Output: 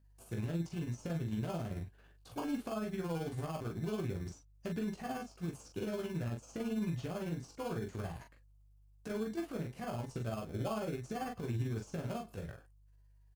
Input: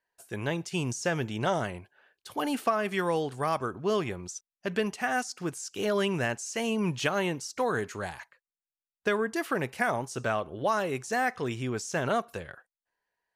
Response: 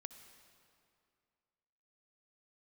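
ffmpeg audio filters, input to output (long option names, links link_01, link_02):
-filter_complex "[0:a]acrossover=split=4400[link_01][link_02];[link_02]acompressor=threshold=-54dB:ratio=4:attack=1:release=60[link_03];[link_01][link_03]amix=inputs=2:normalize=0,bass=frequency=250:gain=9,treble=frequency=4000:gain=10,bandreject=frequency=890:width=23,acrossover=split=1100[link_04][link_05];[link_04]alimiter=level_in=4dB:limit=-24dB:level=0:latency=1:release=156,volume=-4dB[link_06];[link_05]acompressor=threshold=-49dB:ratio=10[link_07];[link_06][link_07]amix=inputs=2:normalize=0,tremolo=f=18:d=0.68,asplit=2[link_08][link_09];[link_09]acrusher=samples=23:mix=1:aa=0.000001,volume=-4dB[link_10];[link_08][link_10]amix=inputs=2:normalize=0,aeval=exprs='val(0)+0.000891*(sin(2*PI*50*n/s)+sin(2*PI*2*50*n/s)/2+sin(2*PI*3*50*n/s)/3+sin(2*PI*4*50*n/s)/4+sin(2*PI*5*50*n/s)/5)':channel_layout=same,aecho=1:1:18|42:0.562|0.562,volume=-5.5dB"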